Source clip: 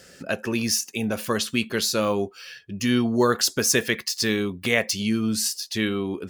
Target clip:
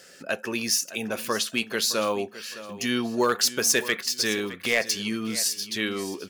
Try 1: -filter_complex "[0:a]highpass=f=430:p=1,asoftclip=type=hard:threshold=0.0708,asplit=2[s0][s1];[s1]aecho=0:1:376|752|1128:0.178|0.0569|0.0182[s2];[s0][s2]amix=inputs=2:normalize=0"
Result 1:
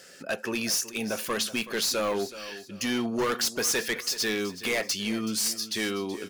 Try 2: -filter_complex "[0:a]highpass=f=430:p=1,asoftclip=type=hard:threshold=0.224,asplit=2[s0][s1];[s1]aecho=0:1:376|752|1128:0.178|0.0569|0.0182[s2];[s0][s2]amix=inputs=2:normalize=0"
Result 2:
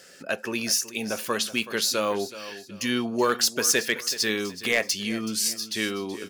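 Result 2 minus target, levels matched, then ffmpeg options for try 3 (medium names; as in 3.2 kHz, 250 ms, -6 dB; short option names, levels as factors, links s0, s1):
echo 237 ms early
-filter_complex "[0:a]highpass=f=430:p=1,asoftclip=type=hard:threshold=0.224,asplit=2[s0][s1];[s1]aecho=0:1:613|1226|1839:0.178|0.0569|0.0182[s2];[s0][s2]amix=inputs=2:normalize=0"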